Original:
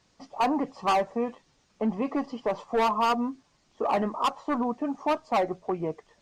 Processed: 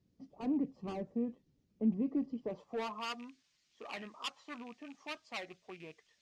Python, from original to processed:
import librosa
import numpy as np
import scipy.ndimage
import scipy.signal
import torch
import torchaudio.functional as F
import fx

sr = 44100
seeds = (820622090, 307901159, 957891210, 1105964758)

y = fx.rattle_buzz(x, sr, strikes_db=-36.0, level_db=-38.0)
y = fx.high_shelf(y, sr, hz=3000.0, db=10.5)
y = fx.filter_sweep_bandpass(y, sr, from_hz=300.0, to_hz=2000.0, start_s=2.34, end_s=3.19, q=0.86)
y = fx.tone_stack(y, sr, knobs='10-0-1')
y = y * librosa.db_to_amplitude(15.0)